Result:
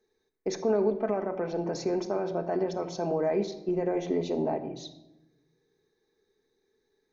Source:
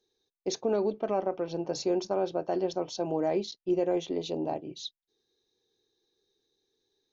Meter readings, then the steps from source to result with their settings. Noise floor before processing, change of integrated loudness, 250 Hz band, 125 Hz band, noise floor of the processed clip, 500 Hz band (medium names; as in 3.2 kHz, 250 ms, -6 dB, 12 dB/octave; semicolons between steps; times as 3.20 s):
under -85 dBFS, +1.0 dB, +1.0 dB, +4.0 dB, -77 dBFS, +1.0 dB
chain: resonant high shelf 2.5 kHz -6.5 dB, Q 3; peak limiter -24 dBFS, peak gain reduction 7 dB; simulated room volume 3500 m³, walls furnished, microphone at 1.5 m; trim +4 dB